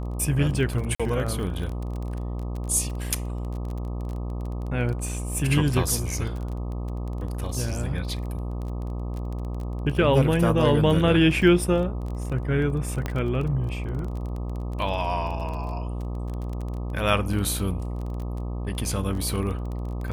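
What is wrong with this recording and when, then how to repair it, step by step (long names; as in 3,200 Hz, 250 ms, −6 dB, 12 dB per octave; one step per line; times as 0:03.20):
mains buzz 60 Hz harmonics 21 −30 dBFS
surface crackle 23 per second −31 dBFS
0:00.95–0:01.00: drop-out 46 ms
0:13.06: click −14 dBFS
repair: click removal
hum removal 60 Hz, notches 21
repair the gap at 0:00.95, 46 ms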